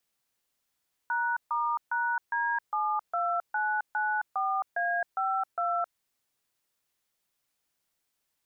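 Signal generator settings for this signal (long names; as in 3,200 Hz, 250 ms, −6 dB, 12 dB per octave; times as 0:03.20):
touch tones "#*#D72994A52", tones 266 ms, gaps 141 ms, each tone −28.5 dBFS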